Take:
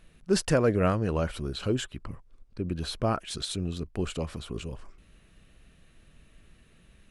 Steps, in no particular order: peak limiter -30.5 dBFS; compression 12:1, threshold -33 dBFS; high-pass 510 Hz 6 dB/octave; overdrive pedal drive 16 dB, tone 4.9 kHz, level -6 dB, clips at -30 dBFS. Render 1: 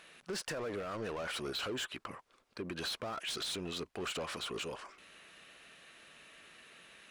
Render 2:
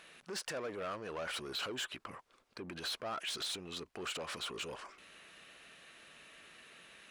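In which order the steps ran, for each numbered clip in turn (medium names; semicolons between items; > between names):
high-pass > overdrive pedal > peak limiter > compression; peak limiter > overdrive pedal > high-pass > compression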